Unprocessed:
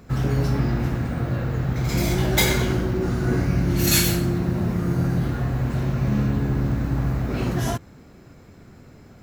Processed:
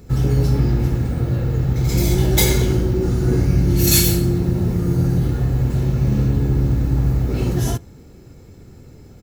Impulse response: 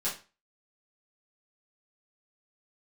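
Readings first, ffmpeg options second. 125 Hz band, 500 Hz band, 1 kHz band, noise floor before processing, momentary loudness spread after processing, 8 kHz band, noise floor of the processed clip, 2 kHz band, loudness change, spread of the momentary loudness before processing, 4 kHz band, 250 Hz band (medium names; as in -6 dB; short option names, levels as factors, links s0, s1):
+5.5 dB, +3.5 dB, -2.0 dB, -48 dBFS, 5 LU, +4.5 dB, -43 dBFS, -2.5 dB, +4.5 dB, 6 LU, +2.0 dB, +3.0 dB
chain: -filter_complex "[0:a]equalizer=f=1400:w=0.48:g=-10.5,aecho=1:1:2.3:0.32,asplit=2[s0][s1];[1:a]atrim=start_sample=2205[s2];[s1][s2]afir=irnorm=-1:irlink=0,volume=0.0447[s3];[s0][s3]amix=inputs=2:normalize=0,volume=1.88"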